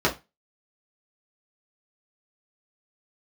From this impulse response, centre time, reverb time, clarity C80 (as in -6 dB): 16 ms, 0.25 s, 22.5 dB